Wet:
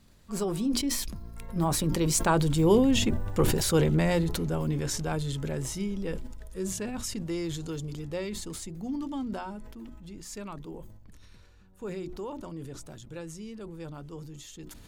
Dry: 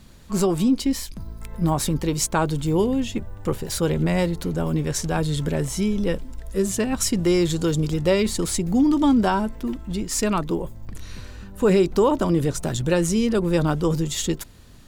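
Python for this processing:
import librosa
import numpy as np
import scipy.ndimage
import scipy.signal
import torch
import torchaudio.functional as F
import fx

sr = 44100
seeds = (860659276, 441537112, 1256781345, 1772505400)

y = fx.doppler_pass(x, sr, speed_mps=13, closest_m=12.0, pass_at_s=3.11)
y = fx.hum_notches(y, sr, base_hz=60, count=6)
y = fx.sustainer(y, sr, db_per_s=37.0)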